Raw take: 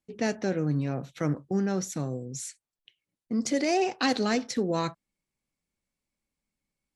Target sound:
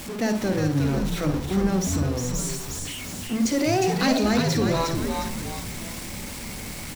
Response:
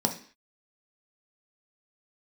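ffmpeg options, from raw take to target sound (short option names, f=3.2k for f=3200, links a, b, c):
-filter_complex "[0:a]aeval=exprs='val(0)+0.5*0.0316*sgn(val(0))':c=same,asplit=7[a][b][c][d][e][f][g];[b]adelay=358,afreqshift=-110,volume=-4dB[h];[c]adelay=716,afreqshift=-220,volume=-10.7dB[i];[d]adelay=1074,afreqshift=-330,volume=-17.5dB[j];[e]adelay=1432,afreqshift=-440,volume=-24.2dB[k];[f]adelay=1790,afreqshift=-550,volume=-31dB[l];[g]adelay=2148,afreqshift=-660,volume=-37.7dB[m];[a][h][i][j][k][l][m]amix=inputs=7:normalize=0,asplit=2[n][o];[1:a]atrim=start_sample=2205,adelay=53[p];[o][p]afir=irnorm=-1:irlink=0,volume=-18.5dB[q];[n][q]amix=inputs=2:normalize=0"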